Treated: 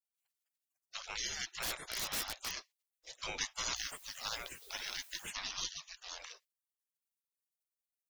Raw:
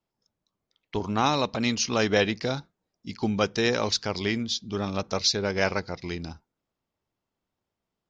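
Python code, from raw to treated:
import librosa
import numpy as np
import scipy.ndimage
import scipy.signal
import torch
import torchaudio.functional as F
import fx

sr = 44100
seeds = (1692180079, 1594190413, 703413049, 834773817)

y = fx.spec_gate(x, sr, threshold_db=-30, keep='weak')
y = fx.overflow_wrap(y, sr, gain_db=38.5, at=(1.62, 2.53))
y = fx.dmg_noise_colour(y, sr, seeds[0], colour='blue', level_db=-66.0, at=(3.75, 5.29), fade=0.02)
y = y * librosa.db_to_amplitude(8.5)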